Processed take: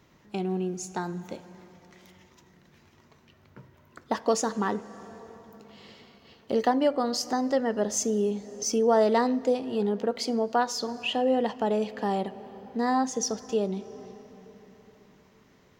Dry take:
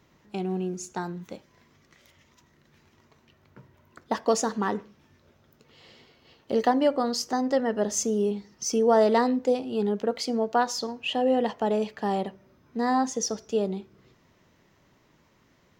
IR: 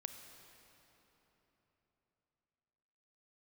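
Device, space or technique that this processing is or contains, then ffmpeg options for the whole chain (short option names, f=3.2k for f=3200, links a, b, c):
ducked reverb: -filter_complex "[0:a]asplit=3[a][b][c];[1:a]atrim=start_sample=2205[d];[b][d]afir=irnorm=-1:irlink=0[e];[c]apad=whole_len=696772[f];[e][f]sidechaincompress=threshold=-30dB:ratio=8:attack=16:release=390,volume=-0.5dB[g];[a][g]amix=inputs=2:normalize=0,volume=-2.5dB"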